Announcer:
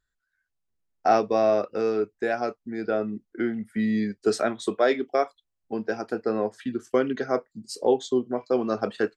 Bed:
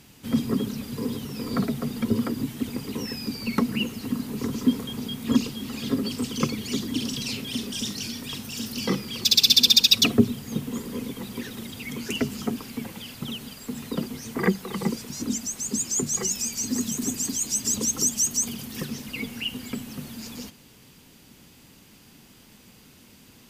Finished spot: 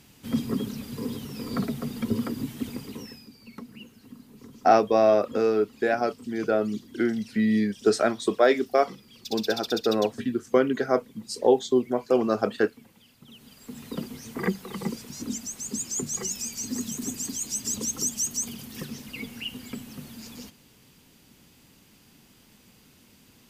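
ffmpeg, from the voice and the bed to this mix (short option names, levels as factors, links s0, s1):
-filter_complex "[0:a]adelay=3600,volume=1.26[s0];[1:a]volume=3.55,afade=t=out:st=2.68:d=0.6:silence=0.16788,afade=t=in:st=13.26:d=0.69:silence=0.199526[s1];[s0][s1]amix=inputs=2:normalize=0"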